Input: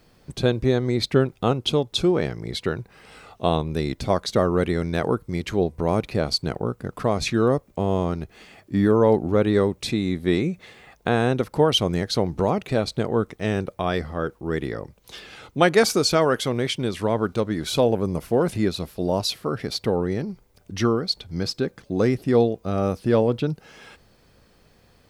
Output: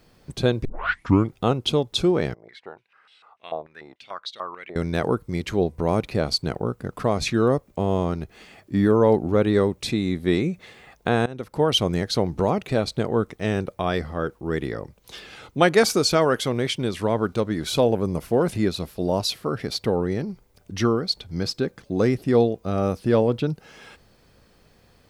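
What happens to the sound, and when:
0:00.65: tape start 0.69 s
0:02.34–0:04.76: band-pass on a step sequencer 6.8 Hz 640–3,600 Hz
0:11.26–0:11.76: fade in, from −20.5 dB

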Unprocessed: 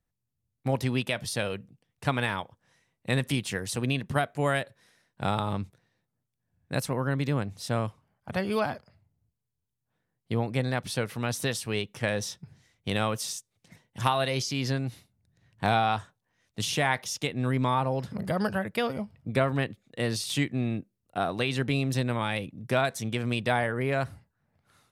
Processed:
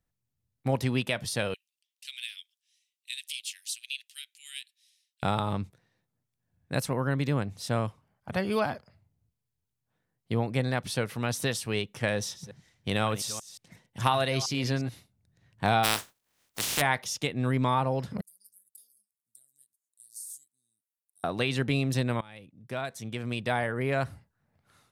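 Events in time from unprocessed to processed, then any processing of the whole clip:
0:01.54–0:05.23: Butterworth high-pass 2,700 Hz
0:12.16–0:14.89: delay that plays each chunk backwards 177 ms, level −13.5 dB
0:15.83–0:16.80: compressing power law on the bin magnitudes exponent 0.25
0:18.21–0:21.24: inverse Chebyshev high-pass filter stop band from 2,700 Hz, stop band 60 dB
0:22.21–0:24.04: fade in, from −23 dB

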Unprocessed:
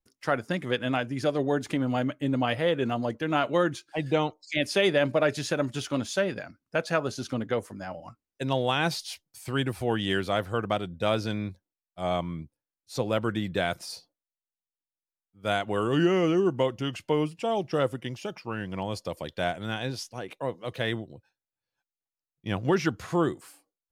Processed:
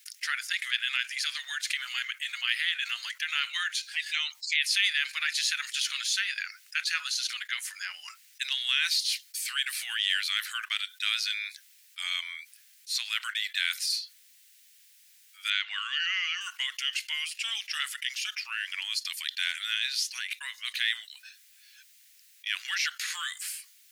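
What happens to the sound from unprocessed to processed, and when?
0:15.50–0:16.41: low-pass filter 5,200 Hz 24 dB per octave
whole clip: dynamic equaliser 4,200 Hz, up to +7 dB, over −59 dBFS, Q 7.5; Butterworth high-pass 1,800 Hz 36 dB per octave; envelope flattener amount 50%; level +3 dB

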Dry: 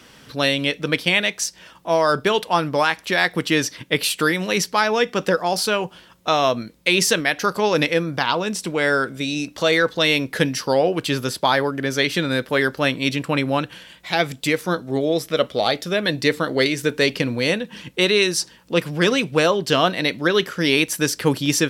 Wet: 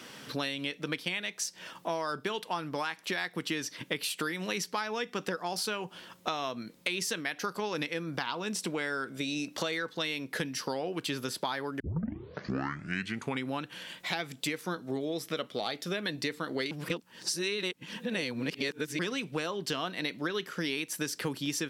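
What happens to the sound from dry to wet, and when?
0:11.80: tape start 1.70 s
0:16.71–0:18.99: reverse
whole clip: high-pass filter 150 Hz 12 dB per octave; dynamic equaliser 570 Hz, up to −6 dB, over −32 dBFS, Q 2.3; downward compressor 6 to 1, threshold −31 dBFS

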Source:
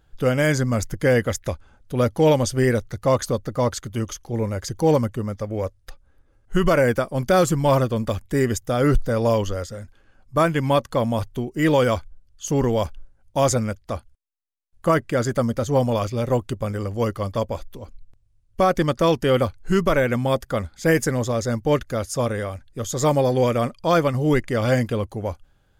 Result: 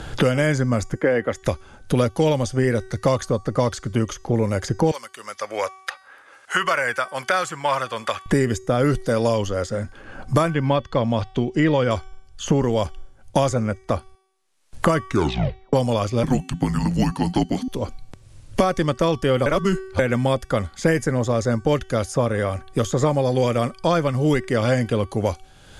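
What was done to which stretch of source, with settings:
0:00.95–0:01.43: three-way crossover with the lows and the highs turned down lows −19 dB, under 210 Hz, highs −18 dB, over 2,500 Hz
0:04.91–0:08.26: high-pass filter 1,300 Hz
0:10.50–0:11.91: high-frequency loss of the air 160 metres
0:14.97: tape stop 0.76 s
0:16.23–0:17.68: frequency shifter −270 Hz
0:19.46–0:19.99: reverse
whole clip: Butterworth low-pass 11,000 Hz 36 dB per octave; hum removal 380.5 Hz, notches 39; multiband upward and downward compressor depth 100%

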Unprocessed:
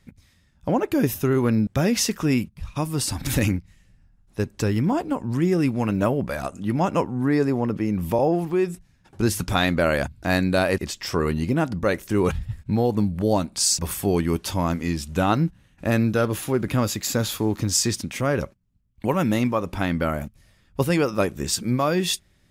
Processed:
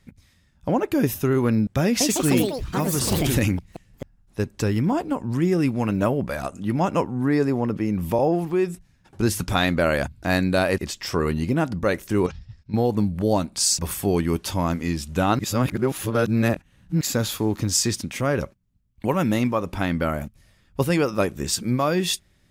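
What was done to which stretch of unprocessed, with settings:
0:01.85–0:04.40: delay with pitch and tempo change per echo 154 ms, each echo +4 semitones, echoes 3
0:12.26–0:12.74: transistor ladder low-pass 5,800 Hz, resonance 65%
0:15.39–0:17.01: reverse

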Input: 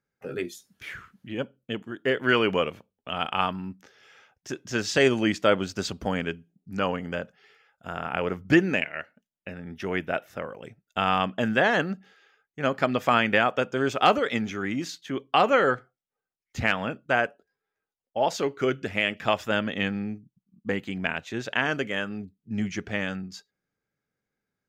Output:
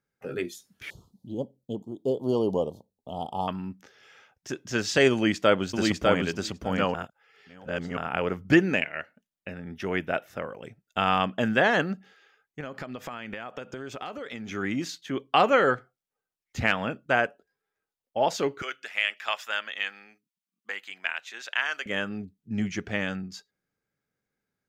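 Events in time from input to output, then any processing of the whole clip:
0:00.90–0:03.48: elliptic band-stop filter 880–3,900 Hz, stop band 50 dB
0:05.13–0:06.24: delay throw 600 ms, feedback 10%, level −2 dB
0:06.94–0:07.97: reverse
0:12.60–0:14.52: downward compressor 10 to 1, threshold −33 dBFS
0:18.62–0:21.86: high-pass filter 1,200 Hz

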